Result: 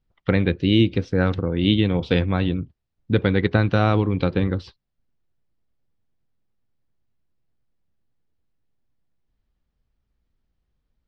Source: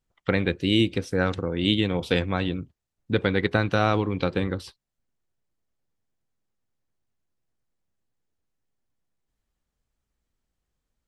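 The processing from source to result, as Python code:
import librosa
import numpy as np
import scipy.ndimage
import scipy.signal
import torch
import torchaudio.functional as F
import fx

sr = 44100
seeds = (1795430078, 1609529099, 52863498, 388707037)

y = scipy.signal.sosfilt(scipy.signal.butter(4, 5000.0, 'lowpass', fs=sr, output='sos'), x)
y = fx.low_shelf(y, sr, hz=290.0, db=8.0)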